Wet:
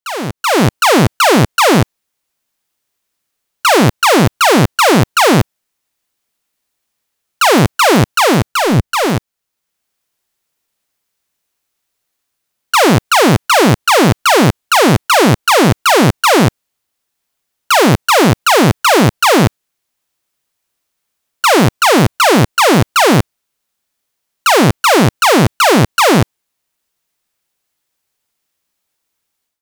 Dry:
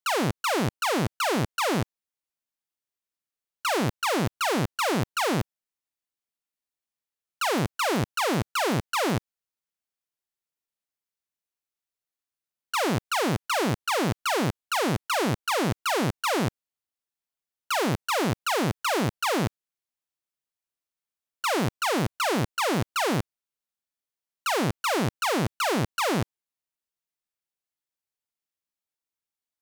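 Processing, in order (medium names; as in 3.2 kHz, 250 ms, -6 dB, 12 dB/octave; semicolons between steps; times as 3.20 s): 8.51–9.06 s: bass shelf 170 Hz +11 dB; level rider gain up to 17 dB; in parallel at -7 dB: saturation -15.5 dBFS, distortion -9 dB; on the sum: trim -1 dB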